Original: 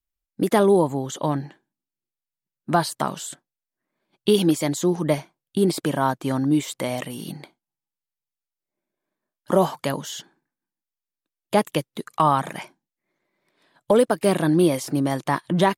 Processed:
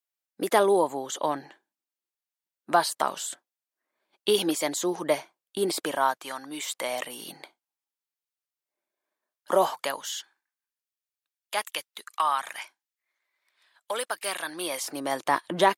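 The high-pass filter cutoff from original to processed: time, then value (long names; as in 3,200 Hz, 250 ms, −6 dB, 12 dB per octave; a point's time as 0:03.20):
0:05.84 480 Hz
0:06.35 1,100 Hz
0:07.05 530 Hz
0:09.77 530 Hz
0:10.17 1,300 Hz
0:14.45 1,300 Hz
0:15.26 410 Hz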